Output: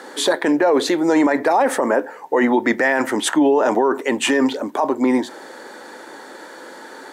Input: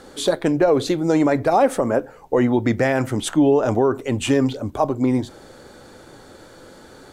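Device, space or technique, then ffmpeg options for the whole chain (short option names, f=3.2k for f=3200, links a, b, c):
laptop speaker: -af "highpass=f=250:w=0.5412,highpass=f=250:w=1.3066,equalizer=f=930:t=o:w=0.31:g=9,equalizer=f=1.8k:t=o:w=0.4:g=10,alimiter=limit=-13dB:level=0:latency=1:release=19,volume=5dB"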